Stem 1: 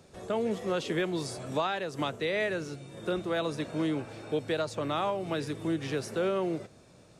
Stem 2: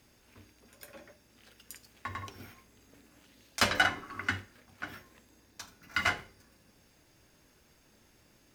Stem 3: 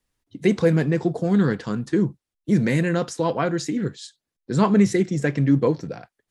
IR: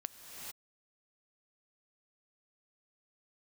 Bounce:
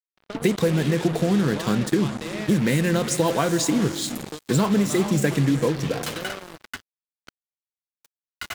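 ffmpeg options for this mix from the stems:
-filter_complex "[0:a]lowpass=f=3.6k:w=0.5412,lowpass=f=3.6k:w=1.3066,adynamicequalizer=threshold=0.00447:dfrequency=420:dqfactor=4.6:tfrequency=420:tqfactor=4.6:attack=5:release=100:ratio=0.375:range=2.5:mode=cutabove:tftype=bell,acompressor=threshold=-35dB:ratio=5,volume=-1dB,asplit=2[a][b];[b]volume=-7dB[c];[1:a]alimiter=limit=-16.5dB:level=0:latency=1:release=257,adelay=2450,volume=-5dB,asplit=2[d][e];[e]volume=-10dB[f];[2:a]acompressor=threshold=-22dB:ratio=12,volume=2dB,asplit=2[g][h];[h]volume=-3dB[i];[3:a]atrim=start_sample=2205[j];[c][f][i]amix=inputs=3:normalize=0[k];[k][j]afir=irnorm=-1:irlink=0[l];[a][d][g][l]amix=inputs=4:normalize=0,aexciter=amount=2.1:drive=2.4:freq=2.9k,acrusher=bits=4:mix=0:aa=0.5"

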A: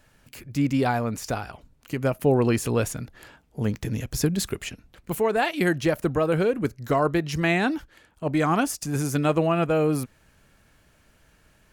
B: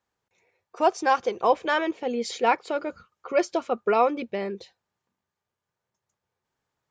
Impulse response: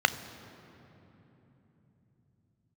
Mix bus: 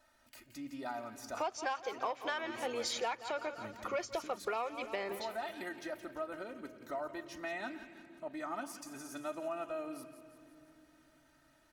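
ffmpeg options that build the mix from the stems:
-filter_complex "[0:a]aecho=1:1:3.2:0.8,acompressor=threshold=-46dB:ratio=1.5,volume=-10dB,asplit=3[a][b][c];[b]volume=-14dB[d];[c]volume=-11.5dB[e];[1:a]highpass=f=500:p=1,asoftclip=type=tanh:threshold=-13.5dB,adelay=600,volume=1.5dB,asplit=2[f][g];[g]volume=-16dB[h];[2:a]atrim=start_sample=2205[i];[d][i]afir=irnorm=-1:irlink=0[j];[e][h]amix=inputs=2:normalize=0,aecho=0:1:172|344|516|688|860|1032|1204|1376:1|0.54|0.292|0.157|0.085|0.0459|0.0248|0.0134[k];[a][f][j][k]amix=inputs=4:normalize=0,lowshelf=f=420:g=-9.5,acompressor=threshold=-33dB:ratio=10"

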